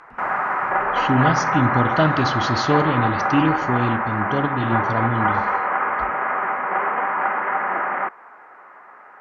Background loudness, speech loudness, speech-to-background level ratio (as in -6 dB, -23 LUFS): -21.5 LUFS, -22.5 LUFS, -1.0 dB